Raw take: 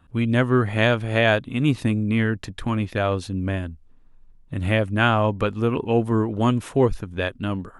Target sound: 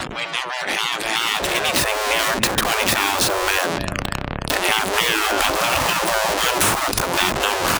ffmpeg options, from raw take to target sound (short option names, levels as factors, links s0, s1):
-filter_complex "[0:a]aeval=exprs='val(0)+0.5*0.0708*sgn(val(0))':c=same,highpass=63,asplit=2[s0][s1];[s1]adelay=292,lowpass=f=3900:p=1,volume=0.0891,asplit=2[s2][s3];[s3]adelay=292,lowpass=f=3900:p=1,volume=0.5,asplit=2[s4][s5];[s5]adelay=292,lowpass=f=3900:p=1,volume=0.5,asplit=2[s6][s7];[s7]adelay=292,lowpass=f=3900:p=1,volume=0.5[s8];[s0][s2][s4][s6][s8]amix=inputs=5:normalize=0,afftfilt=real='re*lt(hypot(re,im),0.141)':imag='im*lt(hypot(re,im),0.141)':win_size=1024:overlap=0.75,bandreject=f=460:w=12,agate=range=0.0224:threshold=0.00501:ratio=3:detection=peak,dynaudnorm=f=290:g=11:m=3.76,equalizer=f=130:w=2.2:g=2.5,afftdn=nr=35:nf=-42,highshelf=f=2700:g=8,acrossover=split=580|1500[s9][s10][s11];[s9]acompressor=threshold=0.0316:ratio=4[s12];[s10]acompressor=threshold=0.0447:ratio=4[s13];[s11]acompressor=threshold=0.0501:ratio=4[s14];[s12][s13][s14]amix=inputs=3:normalize=0,volume=2"